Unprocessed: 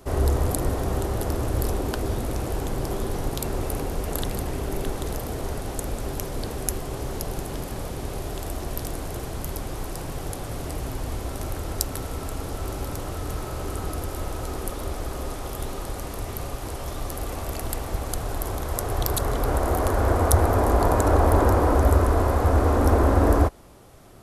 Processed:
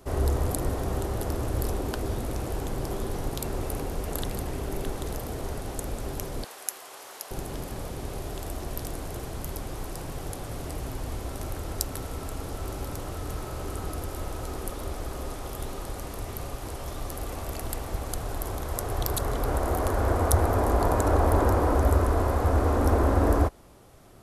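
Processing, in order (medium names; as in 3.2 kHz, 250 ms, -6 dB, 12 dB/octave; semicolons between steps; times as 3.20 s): 6.44–7.31 s: high-pass 910 Hz 12 dB/octave; trim -3.5 dB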